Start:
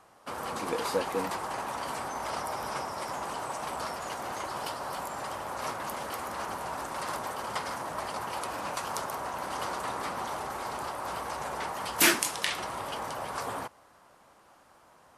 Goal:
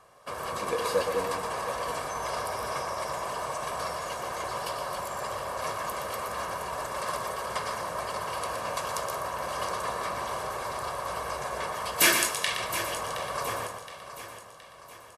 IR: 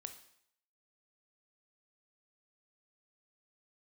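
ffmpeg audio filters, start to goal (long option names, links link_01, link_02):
-filter_complex "[0:a]aecho=1:1:1.8:0.55,aecho=1:1:719|1438|2157|2876|3595:0.251|0.116|0.0532|0.0244|0.0112,asplit=2[link_01][link_02];[1:a]atrim=start_sample=2205,adelay=119[link_03];[link_02][link_03]afir=irnorm=-1:irlink=0,volume=-2dB[link_04];[link_01][link_04]amix=inputs=2:normalize=0"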